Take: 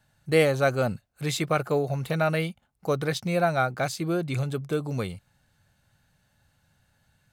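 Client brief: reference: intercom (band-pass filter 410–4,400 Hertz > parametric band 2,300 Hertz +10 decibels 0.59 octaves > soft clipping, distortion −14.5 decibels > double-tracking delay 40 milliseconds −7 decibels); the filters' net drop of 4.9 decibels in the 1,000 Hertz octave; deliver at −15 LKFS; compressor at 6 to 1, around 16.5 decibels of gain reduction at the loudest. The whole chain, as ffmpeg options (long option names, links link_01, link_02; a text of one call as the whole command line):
ffmpeg -i in.wav -filter_complex "[0:a]equalizer=frequency=1000:width_type=o:gain=-9,acompressor=threshold=-35dB:ratio=6,highpass=410,lowpass=4400,equalizer=frequency=2300:width_type=o:width=0.59:gain=10,asoftclip=threshold=-32dB,asplit=2[link_01][link_02];[link_02]adelay=40,volume=-7dB[link_03];[link_01][link_03]amix=inputs=2:normalize=0,volume=26.5dB" out.wav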